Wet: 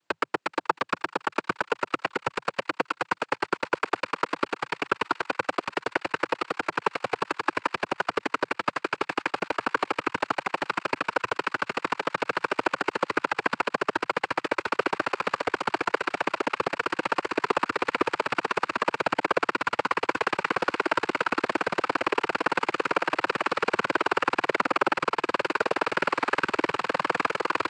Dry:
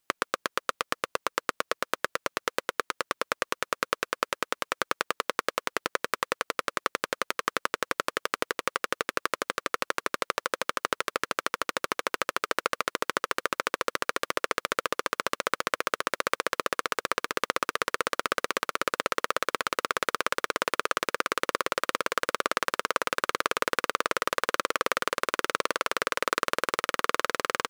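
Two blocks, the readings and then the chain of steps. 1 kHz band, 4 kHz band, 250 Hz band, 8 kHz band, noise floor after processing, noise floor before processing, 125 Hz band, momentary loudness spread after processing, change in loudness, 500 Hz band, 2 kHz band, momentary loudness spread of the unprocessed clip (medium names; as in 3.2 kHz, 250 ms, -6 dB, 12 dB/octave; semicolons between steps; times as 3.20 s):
+3.0 dB, -2.5 dB, +7.5 dB, -10.0 dB, -61 dBFS, -78 dBFS, +6.0 dB, 4 LU, +2.0 dB, +3.0 dB, +2.0 dB, 3 LU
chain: Bessel low-pass 4.7 kHz; treble shelf 2.8 kHz -12 dB; feedback echo behind a high-pass 432 ms, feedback 75%, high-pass 1.8 kHz, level -17 dB; noise-vocoded speech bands 8; trim +5.5 dB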